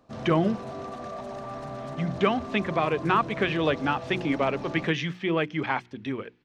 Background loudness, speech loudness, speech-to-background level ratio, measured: -37.5 LUFS, -27.0 LUFS, 10.5 dB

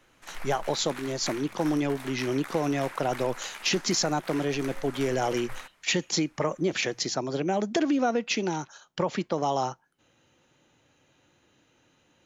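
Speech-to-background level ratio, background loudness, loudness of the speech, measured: 14.0 dB, -42.5 LUFS, -28.5 LUFS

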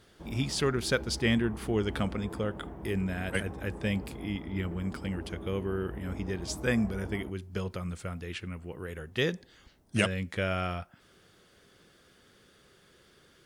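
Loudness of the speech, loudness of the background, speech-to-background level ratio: -33.0 LUFS, -43.5 LUFS, 10.5 dB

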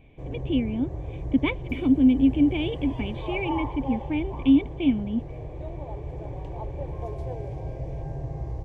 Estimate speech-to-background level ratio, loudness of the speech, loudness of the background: 10.0 dB, -25.0 LUFS, -35.0 LUFS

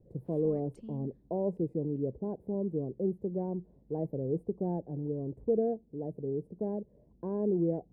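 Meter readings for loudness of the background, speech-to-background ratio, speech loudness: -50.5 LUFS, 16.0 dB, -34.5 LUFS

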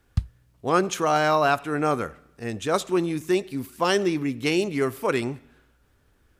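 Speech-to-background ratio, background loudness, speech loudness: 8.5 dB, -33.0 LUFS, -24.5 LUFS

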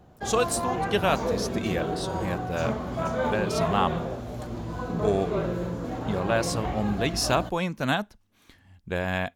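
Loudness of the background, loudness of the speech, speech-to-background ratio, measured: -30.5 LUFS, -28.5 LUFS, 2.0 dB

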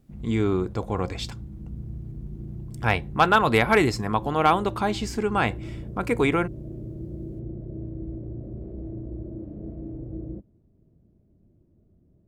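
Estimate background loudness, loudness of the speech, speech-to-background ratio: -37.5 LUFS, -24.0 LUFS, 13.5 dB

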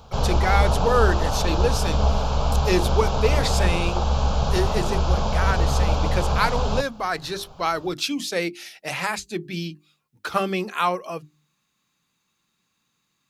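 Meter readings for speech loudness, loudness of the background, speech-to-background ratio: -26.5 LUFS, -23.5 LUFS, -3.0 dB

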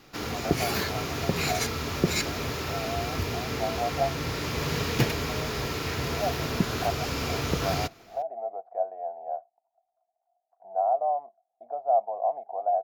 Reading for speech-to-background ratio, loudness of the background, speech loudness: -3.0 dB, -29.5 LUFS, -32.5 LUFS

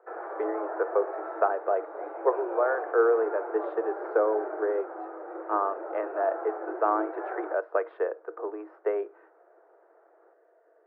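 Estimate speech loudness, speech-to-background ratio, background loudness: -29.5 LUFS, 7.5 dB, -37.0 LUFS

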